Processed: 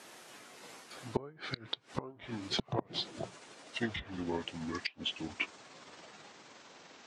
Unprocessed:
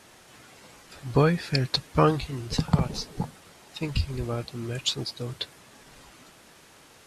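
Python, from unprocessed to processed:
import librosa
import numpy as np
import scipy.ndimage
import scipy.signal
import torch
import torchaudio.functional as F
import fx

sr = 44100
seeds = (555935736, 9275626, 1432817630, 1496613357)

y = fx.pitch_glide(x, sr, semitones=-9.5, runs='starting unshifted')
y = fx.env_lowpass_down(y, sr, base_hz=1100.0, full_db=-19.5)
y = scipy.signal.sosfilt(scipy.signal.butter(2, 230.0, 'highpass', fs=sr, output='sos'), y)
y = fx.gate_flip(y, sr, shuts_db=-19.0, range_db=-24)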